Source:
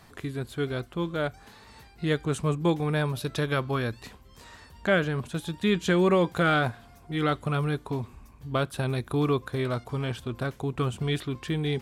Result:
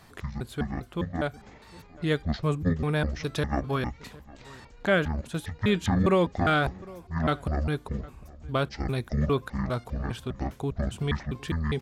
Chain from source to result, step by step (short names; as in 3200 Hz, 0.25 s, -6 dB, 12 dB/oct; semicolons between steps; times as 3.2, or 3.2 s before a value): trilling pitch shifter -11.5 st, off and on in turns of 0.202 s; outdoor echo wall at 130 m, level -21 dB